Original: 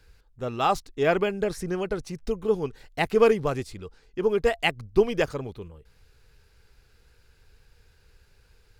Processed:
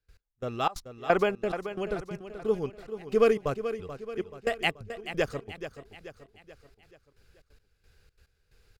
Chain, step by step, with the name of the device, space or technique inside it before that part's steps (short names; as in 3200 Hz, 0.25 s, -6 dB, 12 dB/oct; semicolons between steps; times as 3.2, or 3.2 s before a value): notch 920 Hz, Q 8; 0.67–1.42 bell 960 Hz +7 dB 1.8 oct; trance gate with a delay (step gate ".x...xxx" 178 bpm -24 dB; feedback echo 0.432 s, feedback 48%, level -11 dB); gain -3 dB